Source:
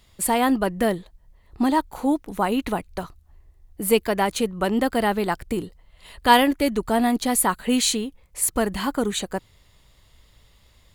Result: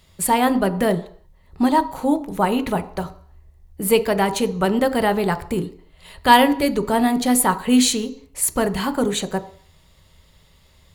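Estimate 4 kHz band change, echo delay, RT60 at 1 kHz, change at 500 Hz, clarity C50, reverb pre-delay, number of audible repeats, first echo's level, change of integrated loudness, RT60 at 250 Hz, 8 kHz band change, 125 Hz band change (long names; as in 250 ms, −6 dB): +2.0 dB, no echo audible, 0.55 s, +3.0 dB, 15.5 dB, 3 ms, no echo audible, no echo audible, +3.0 dB, 0.50 s, +2.0 dB, +6.0 dB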